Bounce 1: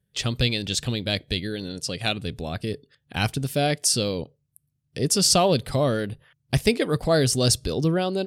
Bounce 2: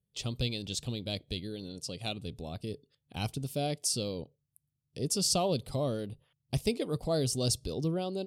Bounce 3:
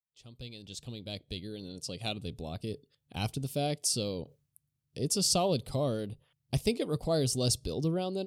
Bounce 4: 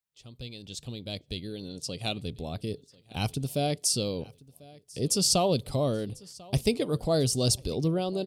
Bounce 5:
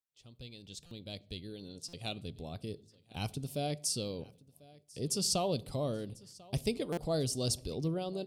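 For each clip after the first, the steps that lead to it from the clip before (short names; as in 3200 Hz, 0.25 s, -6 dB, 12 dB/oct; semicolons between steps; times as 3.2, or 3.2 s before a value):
bell 1700 Hz -14 dB 0.74 oct; gain -9 dB
opening faded in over 2.07 s; reverse; upward compressor, threshold -52 dBFS; reverse; gain +1 dB
feedback echo 1.044 s, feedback 36%, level -23 dB; gain +3.5 dB
on a send at -20.5 dB: reverb RT60 0.60 s, pre-delay 12 ms; on the sum: stuck buffer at 0.86/1.88/6.92, samples 256, times 8; gain -7.5 dB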